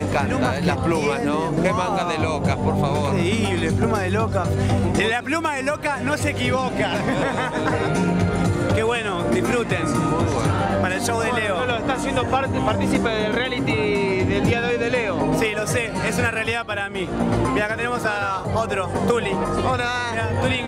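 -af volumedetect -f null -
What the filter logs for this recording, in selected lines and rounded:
mean_volume: -21.1 dB
max_volume: -7.1 dB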